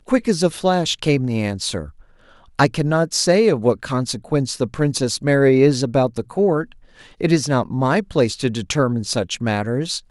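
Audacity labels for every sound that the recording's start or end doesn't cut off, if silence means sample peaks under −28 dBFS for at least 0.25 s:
2.590000	6.640000	sound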